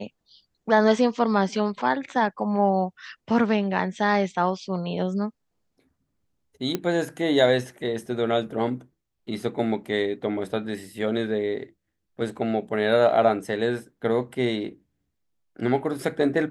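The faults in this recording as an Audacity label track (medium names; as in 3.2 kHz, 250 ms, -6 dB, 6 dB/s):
6.750000	6.750000	pop -11 dBFS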